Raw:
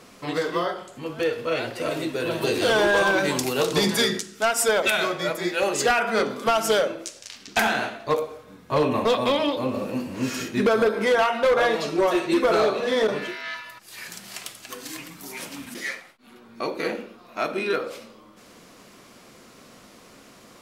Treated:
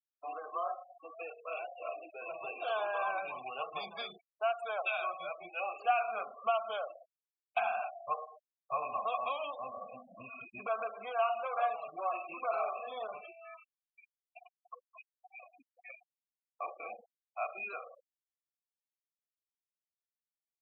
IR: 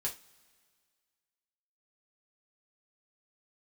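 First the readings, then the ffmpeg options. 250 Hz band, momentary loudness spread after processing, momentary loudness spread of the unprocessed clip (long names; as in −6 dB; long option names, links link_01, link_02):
−33.0 dB, 19 LU, 16 LU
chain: -filter_complex "[0:a]asplit=3[link_01][link_02][link_03];[link_01]bandpass=frequency=730:width_type=q:width=8,volume=0dB[link_04];[link_02]bandpass=frequency=1090:width_type=q:width=8,volume=-6dB[link_05];[link_03]bandpass=frequency=2440:width_type=q:width=8,volume=-9dB[link_06];[link_04][link_05][link_06]amix=inputs=3:normalize=0,agate=range=-57dB:threshold=-54dB:ratio=16:detection=peak,asubboost=boost=7.5:cutoff=120,afftfilt=real='re*gte(hypot(re,im),0.0112)':imag='im*gte(hypot(re,im),0.0112)':win_size=1024:overlap=0.75,acrossover=split=640[link_07][link_08];[link_07]acompressor=threshold=-54dB:ratio=6[link_09];[link_09][link_08]amix=inputs=2:normalize=0,volume=1dB"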